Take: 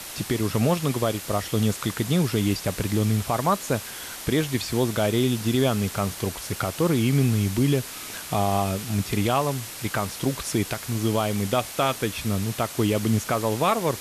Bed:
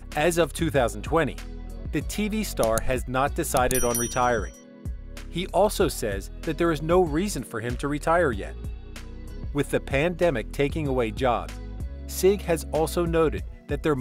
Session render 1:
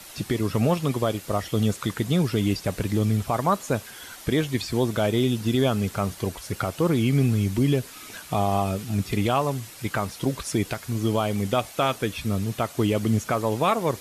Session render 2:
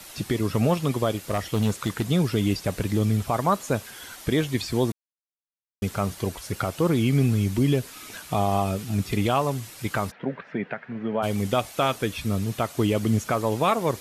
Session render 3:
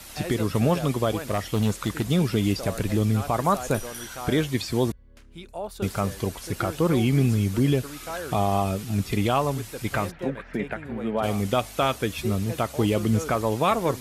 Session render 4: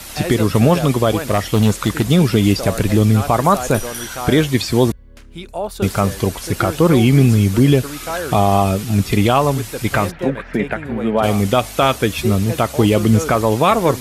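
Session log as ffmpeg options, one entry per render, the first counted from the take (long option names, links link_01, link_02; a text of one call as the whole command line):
ffmpeg -i in.wav -af "afftdn=noise_reduction=8:noise_floor=-37" out.wav
ffmpeg -i in.wav -filter_complex "[0:a]asettb=1/sr,asplit=3[link_01][link_02][link_03];[link_01]atrim=end=1.274[link_04];[link_02]atrim=start=1.27:end=2.05,asetpts=PTS-STARTPTS,afade=type=in:duration=0.004:curve=qsin,afade=type=out:start_time=0.776:duration=0.004:curve=qsin,aeval=exprs='0.158*(abs(mod(val(0)/0.158+3,4)-2)-1)':channel_layout=same[link_05];[link_03]atrim=start=2.046[link_06];[link_04][link_05]acrossfade=duration=0.004:curve1=hsin:curve2=qsin[link_07];[link_07][link_06]acrossfade=duration=0.004:curve1=qsin:curve2=hsin,asplit=3[link_08][link_09][link_10];[link_08]afade=type=out:start_time=10.1:duration=0.02[link_11];[link_09]highpass=frequency=170:width=0.5412,highpass=frequency=170:width=1.3066,equalizer=frequency=320:width_type=q:width=4:gain=-10,equalizer=frequency=1100:width_type=q:width=4:gain=-6,equalizer=frequency=1700:width_type=q:width=4:gain=6,lowpass=frequency=2200:width=0.5412,lowpass=frequency=2200:width=1.3066,afade=type=in:start_time=10.1:duration=0.02,afade=type=out:start_time=11.22:duration=0.02[link_12];[link_10]afade=type=in:start_time=11.22:duration=0.02[link_13];[link_11][link_12][link_13]amix=inputs=3:normalize=0,asplit=3[link_14][link_15][link_16];[link_14]atrim=end=4.92,asetpts=PTS-STARTPTS,afade=type=out:start_time=4.916:duration=0.004:curve=hsin[link_17];[link_15]atrim=start=4.92:end=5.82,asetpts=PTS-STARTPTS,volume=0[link_18];[link_16]atrim=start=5.82,asetpts=PTS-STARTPTS,afade=type=in:duration=0.004:curve=hsin[link_19];[link_17][link_18][link_19]concat=n=3:v=0:a=1" out.wav
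ffmpeg -i in.wav -i bed.wav -filter_complex "[1:a]volume=-13dB[link_01];[0:a][link_01]amix=inputs=2:normalize=0" out.wav
ffmpeg -i in.wav -af "volume=9.5dB,alimiter=limit=-3dB:level=0:latency=1" out.wav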